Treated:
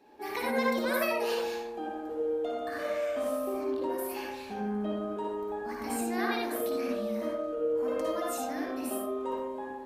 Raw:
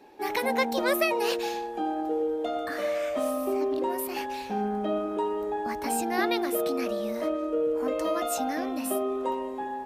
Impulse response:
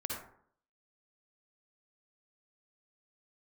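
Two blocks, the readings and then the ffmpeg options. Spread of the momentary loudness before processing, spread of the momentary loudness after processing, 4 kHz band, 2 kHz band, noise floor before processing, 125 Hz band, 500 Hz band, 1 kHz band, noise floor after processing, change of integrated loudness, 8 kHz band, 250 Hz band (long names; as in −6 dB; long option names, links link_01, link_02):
6 LU, 8 LU, −5.5 dB, −3.0 dB, −35 dBFS, can't be measured, −3.0 dB, −5.5 dB, −40 dBFS, −4.0 dB, −5.5 dB, −3.5 dB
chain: -filter_complex "[1:a]atrim=start_sample=2205,afade=type=out:start_time=0.25:duration=0.01,atrim=end_sample=11466[link_01];[0:a][link_01]afir=irnorm=-1:irlink=0,volume=-5dB"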